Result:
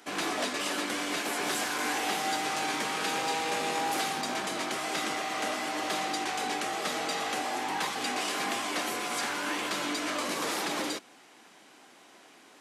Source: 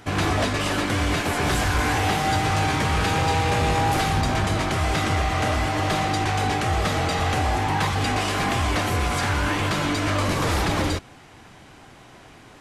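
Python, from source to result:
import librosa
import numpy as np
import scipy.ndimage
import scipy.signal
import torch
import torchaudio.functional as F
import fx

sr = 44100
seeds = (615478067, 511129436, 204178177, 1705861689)

y = scipy.signal.sosfilt(scipy.signal.butter(4, 230.0, 'highpass', fs=sr, output='sos'), x)
y = fx.high_shelf(y, sr, hz=3300.0, db=7.0)
y = y * 10.0 ** (-8.5 / 20.0)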